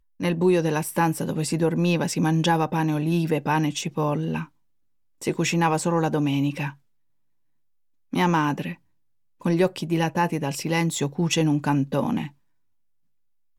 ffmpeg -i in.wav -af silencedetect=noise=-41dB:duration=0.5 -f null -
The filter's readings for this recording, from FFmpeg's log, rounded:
silence_start: 4.46
silence_end: 5.22 | silence_duration: 0.76
silence_start: 6.74
silence_end: 8.13 | silence_duration: 1.39
silence_start: 8.75
silence_end: 9.41 | silence_duration: 0.67
silence_start: 12.30
silence_end: 13.58 | silence_duration: 1.29